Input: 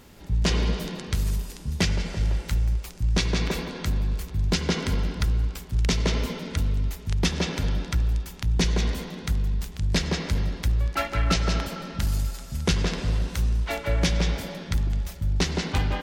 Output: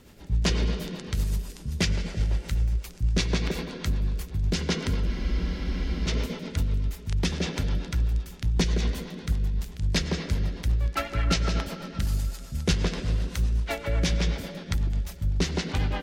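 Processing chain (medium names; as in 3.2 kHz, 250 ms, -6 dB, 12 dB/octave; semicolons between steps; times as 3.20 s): rotary cabinet horn 8 Hz; spectral freeze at 5.08 s, 1.00 s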